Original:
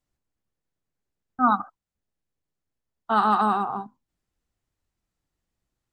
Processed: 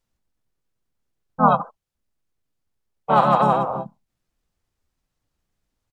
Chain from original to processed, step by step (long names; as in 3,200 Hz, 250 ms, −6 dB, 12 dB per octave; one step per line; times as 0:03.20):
pitch-shifted copies added −7 semitones −1 dB, −3 semitones −1 dB